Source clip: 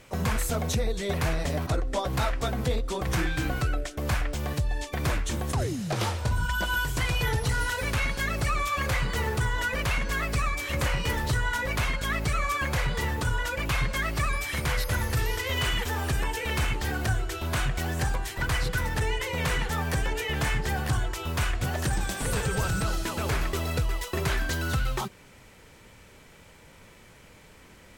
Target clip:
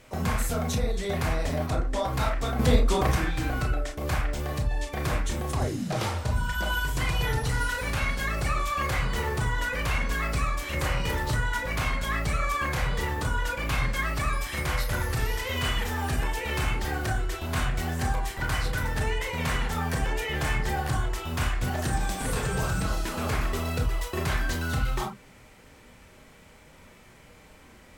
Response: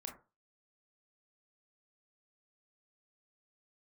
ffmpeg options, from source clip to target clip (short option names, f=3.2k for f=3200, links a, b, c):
-filter_complex "[0:a]asettb=1/sr,asplit=3[a][b][c];[a]atrim=end=2.594[d];[b]atrim=start=2.59:end=3.12,asetpts=PTS-STARTPTS,afade=t=in:d=0.004:c=qsin,afade=t=out:st=0.526:d=0.004:c=qsin,acontrast=80[e];[c]atrim=start=3.116[f];[d][e]acrossfade=d=0.004:c1=hsin:c2=qsin[g];[g][f]acrossfade=d=0.004:c1=qsin:c2=hsin[h];[1:a]atrim=start_sample=2205,afade=t=out:st=0.14:d=0.01,atrim=end_sample=6615[i];[h][i]afir=irnorm=-1:irlink=0,volume=3.5dB"